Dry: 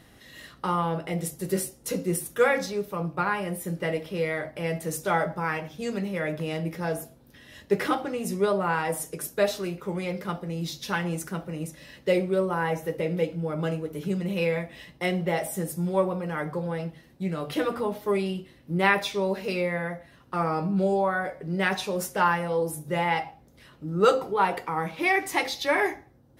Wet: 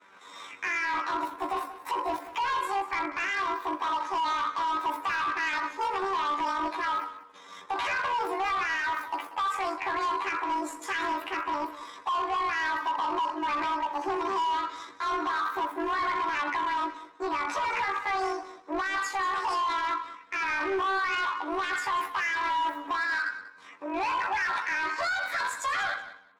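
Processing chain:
pitch shift by two crossfaded delay taps +11.5 semitones
downward expander −50 dBFS
high-pass filter 270 Hz 12 dB per octave
flat-topped bell 1,500 Hz +14.5 dB
brickwall limiter −19 dBFS, peak gain reduction 22.5 dB
gain into a clipping stage and back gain 25 dB
high-frequency loss of the air 55 metres
on a send: repeating echo 189 ms, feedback 17%, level −15 dB

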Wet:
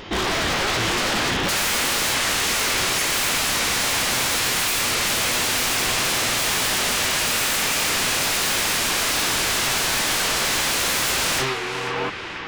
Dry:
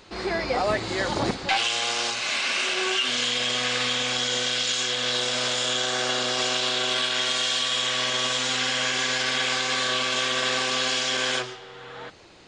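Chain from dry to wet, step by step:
loose part that buzzes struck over −41 dBFS, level −23 dBFS
in parallel at −1 dB: brickwall limiter −20 dBFS, peak gain reduction 9.5 dB
on the sum: wave folding −25 dBFS
formants moved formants −5 semitones
pitch vibrato 2 Hz 14 cents
on a send: feedback echo with a band-pass in the loop 487 ms, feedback 73%, band-pass 1,800 Hz, level −6.5 dB
on the sum: wow of a warped record 45 rpm, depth 100 cents
level +7.5 dB

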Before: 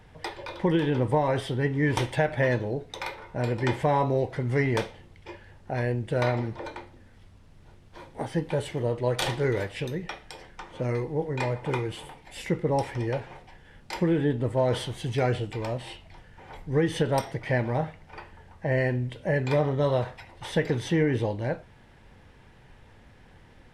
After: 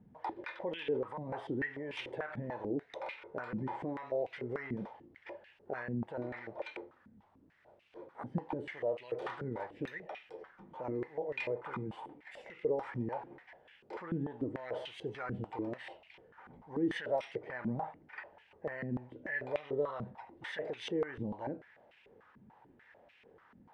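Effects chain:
brickwall limiter −23 dBFS, peak gain reduction 11 dB
band-pass on a step sequencer 6.8 Hz 210–2,600 Hz
level +4.5 dB

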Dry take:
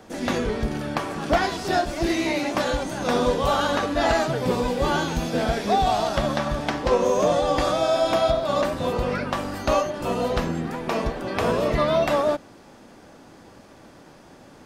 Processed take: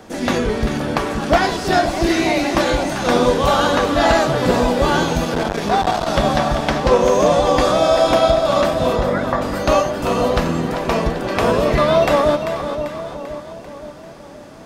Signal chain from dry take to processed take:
0:08.96–0:09.42: elliptic low-pass filter 2,000 Hz
echo with a time of its own for lows and highs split 1,000 Hz, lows 522 ms, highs 392 ms, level −8.5 dB
0:05.24–0:06.08: saturating transformer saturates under 750 Hz
level +6 dB

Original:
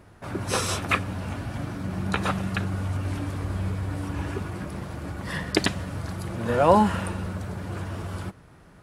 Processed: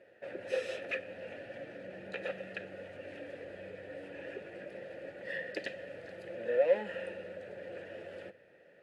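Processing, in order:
low-shelf EQ 120 Hz −8 dB
notch filter 5,700 Hz, Q 21
in parallel at −1.5 dB: downward compressor, threshold −36 dBFS, peak gain reduction 22 dB
on the sum: soft clipping −17.5 dBFS, distortion −10 dB
formant filter e
on a send at −15 dB: convolution reverb RT60 1.2 s, pre-delay 6 ms
on the sum: level +1 dB

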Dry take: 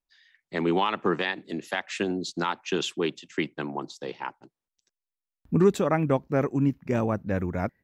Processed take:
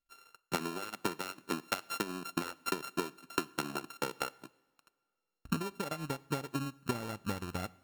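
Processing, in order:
samples sorted by size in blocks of 32 samples
downward compressor 12 to 1, threshold −35 dBFS, peak gain reduction 20.5 dB
transient designer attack +8 dB, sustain −9 dB
coupled-rooms reverb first 0.81 s, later 2.8 s, from −18 dB, DRR 19.5 dB
level −1.5 dB

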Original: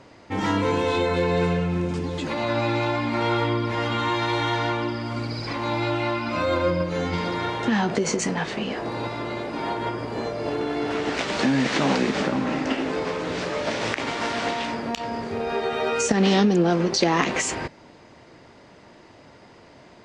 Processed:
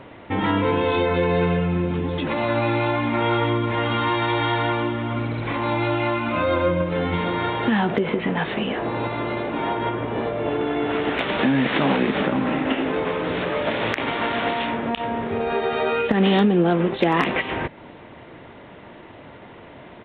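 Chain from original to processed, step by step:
downsampling to 8,000 Hz
in parallel at +1.5 dB: downward compressor 12 to 1, threshold −32 dBFS, peak gain reduction 17.5 dB
on the sum: gain into a clipping stage and back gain 8 dB

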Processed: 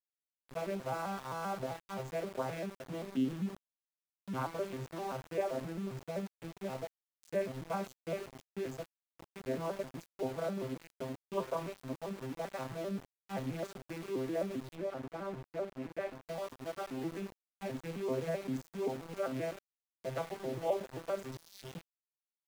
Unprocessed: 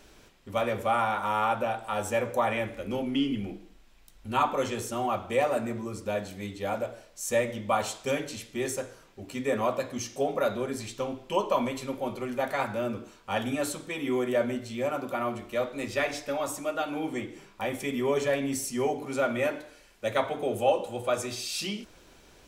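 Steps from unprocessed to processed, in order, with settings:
vocoder with an arpeggio as carrier major triad, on C3, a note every 131 ms
centre clipping without the shift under −36 dBFS
0:14.75–0:16.25: high-shelf EQ 3,400 Hz −11 dB
level −8 dB

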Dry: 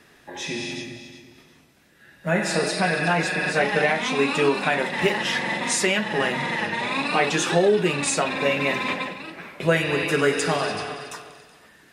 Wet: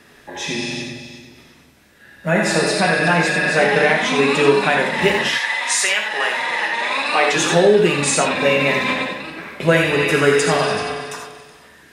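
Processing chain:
0:05.28–0:07.35: high-pass filter 1,200 Hz → 390 Hz 12 dB per octave
reverb whose tail is shaped and stops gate 110 ms rising, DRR 4 dB
level +4.5 dB

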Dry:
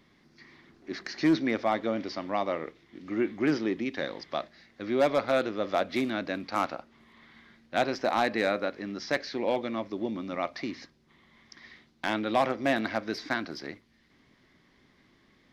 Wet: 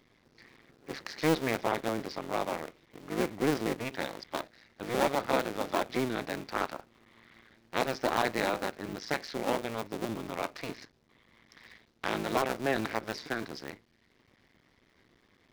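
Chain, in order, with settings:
sub-harmonics by changed cycles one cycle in 2, muted

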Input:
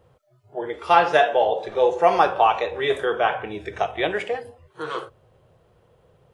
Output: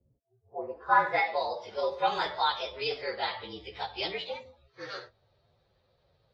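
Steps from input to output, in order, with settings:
partials spread apart or drawn together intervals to 113%
flat-topped bell 5,200 Hz +9 dB 1.1 octaves
low-pass filter sweep 270 Hz → 3,400 Hz, 0:00.09–0:01.45
level −9 dB

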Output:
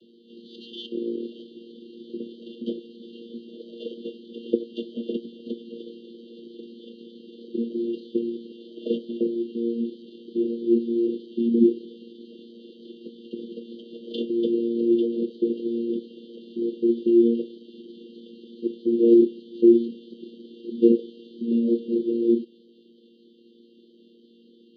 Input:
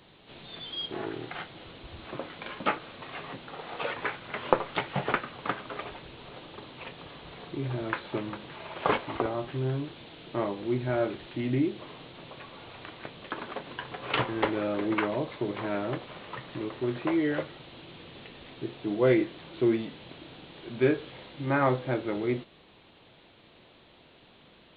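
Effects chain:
channel vocoder with a chord as carrier bare fifth, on A#3
linear-phase brick-wall band-stop 620–2,800 Hz
level +7.5 dB

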